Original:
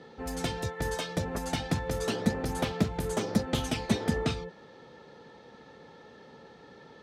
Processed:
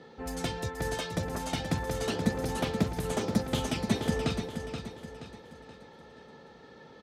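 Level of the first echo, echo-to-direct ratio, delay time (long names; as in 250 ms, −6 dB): −8.0 dB, −7.0 dB, 477 ms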